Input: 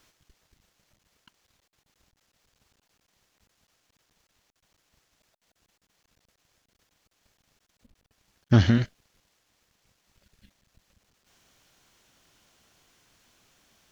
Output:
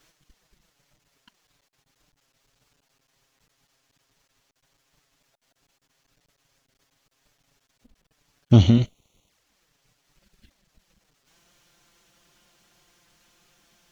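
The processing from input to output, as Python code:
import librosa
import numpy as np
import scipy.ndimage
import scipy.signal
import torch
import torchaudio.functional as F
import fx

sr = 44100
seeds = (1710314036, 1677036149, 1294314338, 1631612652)

y = fx.env_flanger(x, sr, rest_ms=9.3, full_db=-43.5)
y = y * 10.0 ** (4.5 / 20.0)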